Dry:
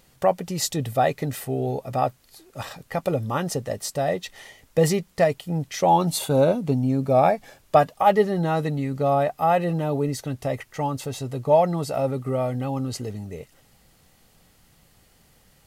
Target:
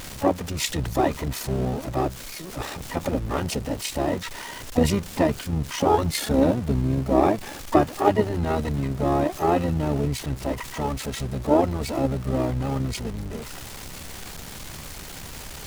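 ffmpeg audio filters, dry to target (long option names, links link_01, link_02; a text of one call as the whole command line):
ffmpeg -i in.wav -filter_complex "[0:a]aeval=exprs='val(0)+0.5*0.0316*sgn(val(0))':channel_layout=same,tremolo=f=68:d=0.571,asplit=3[link_01][link_02][link_03];[link_02]asetrate=22050,aresample=44100,atempo=2,volume=0dB[link_04];[link_03]asetrate=66075,aresample=44100,atempo=0.66742,volume=-12dB[link_05];[link_01][link_04][link_05]amix=inputs=3:normalize=0,volume=-2.5dB" out.wav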